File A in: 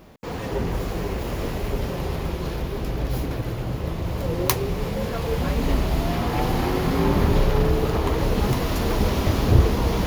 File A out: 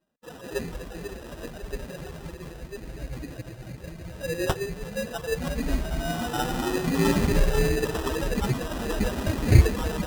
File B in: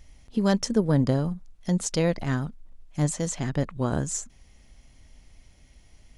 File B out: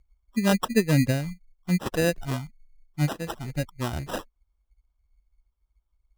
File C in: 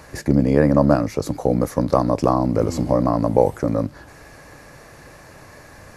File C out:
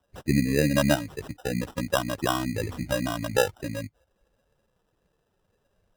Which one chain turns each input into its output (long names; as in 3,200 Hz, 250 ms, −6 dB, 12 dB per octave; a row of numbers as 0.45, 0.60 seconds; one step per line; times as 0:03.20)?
spectral dynamics exaggerated over time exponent 2
decimation without filtering 20×
harmonic generator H 6 −45 dB, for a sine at −4.5 dBFS
loudness normalisation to −27 LKFS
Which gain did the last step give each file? +2.5, +3.0, −4.0 decibels